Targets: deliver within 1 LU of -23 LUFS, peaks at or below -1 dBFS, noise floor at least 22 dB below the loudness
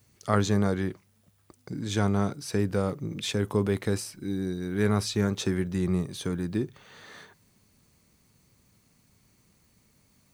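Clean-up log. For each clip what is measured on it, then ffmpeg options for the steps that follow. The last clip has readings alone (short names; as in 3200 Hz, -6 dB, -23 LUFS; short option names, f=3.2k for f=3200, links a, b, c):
loudness -28.5 LUFS; peak -7.0 dBFS; loudness target -23.0 LUFS
-> -af "volume=5.5dB"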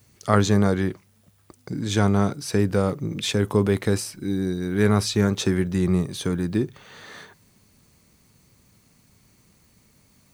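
loudness -23.0 LUFS; peak -1.5 dBFS; noise floor -60 dBFS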